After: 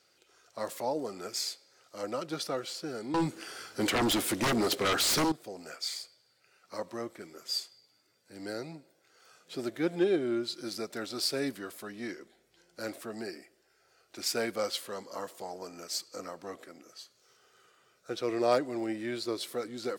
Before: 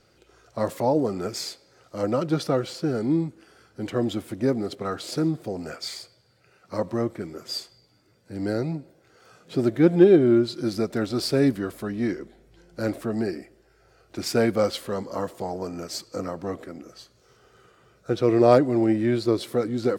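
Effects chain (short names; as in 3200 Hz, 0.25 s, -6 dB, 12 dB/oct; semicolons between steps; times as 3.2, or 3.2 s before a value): HPF 490 Hz 6 dB/oct; high shelf 2200 Hz +8 dB; 3.14–5.32 sine folder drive 13 dB, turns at -15.5 dBFS; gain -8 dB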